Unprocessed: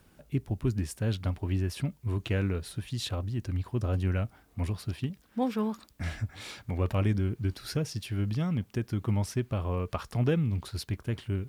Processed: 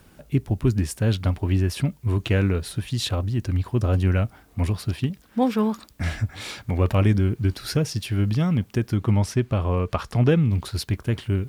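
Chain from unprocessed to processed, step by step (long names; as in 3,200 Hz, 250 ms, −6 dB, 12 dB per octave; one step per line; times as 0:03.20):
0:08.96–0:10.51: high-shelf EQ 10,000 Hz −8 dB
level +8 dB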